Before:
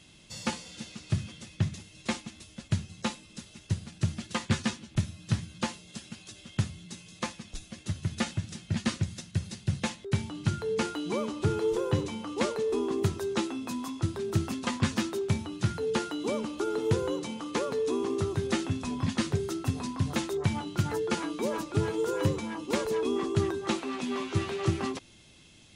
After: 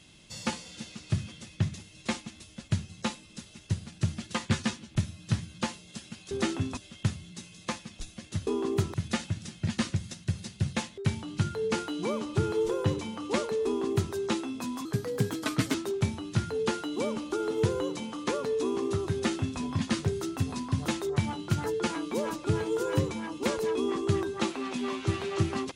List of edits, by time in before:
12.73–13.20 s: copy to 8.01 s
13.92–15.02 s: speed 123%
18.41–18.87 s: copy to 6.31 s

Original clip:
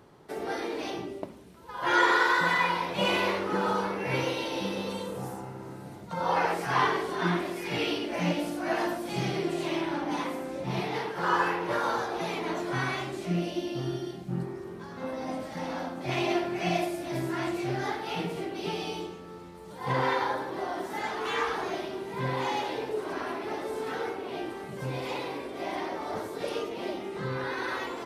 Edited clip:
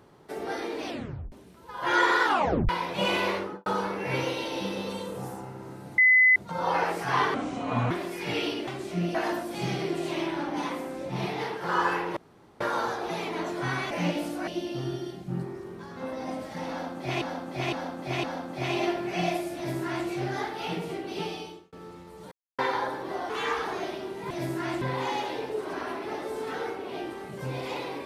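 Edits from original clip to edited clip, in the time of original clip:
0.86 s: tape stop 0.46 s
2.24 s: tape stop 0.45 s
3.36–3.66 s: studio fade out
5.98 s: add tone 2.02 kHz -15 dBFS 0.38 s
6.96–7.35 s: speed 69%
8.12–8.69 s: swap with 13.01–13.48 s
11.71 s: insert room tone 0.44 s
15.71–16.22 s: loop, 4 plays
17.04–17.55 s: copy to 22.21 s
18.71–19.20 s: fade out
19.79–20.06 s: mute
20.77–21.20 s: delete

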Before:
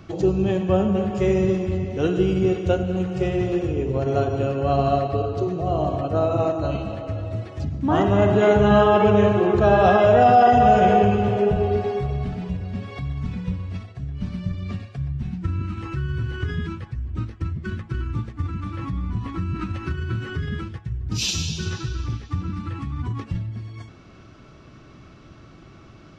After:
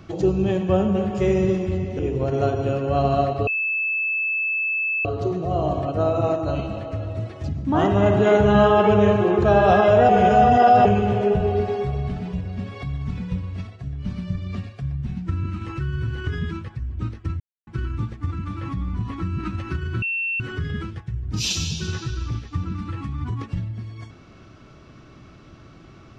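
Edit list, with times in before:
1.99–3.73 s: delete
5.21 s: add tone 2.62 kHz -20.5 dBFS 1.58 s
10.25–11.01 s: reverse
17.56–17.83 s: mute
20.18 s: add tone 2.7 kHz -22 dBFS 0.38 s

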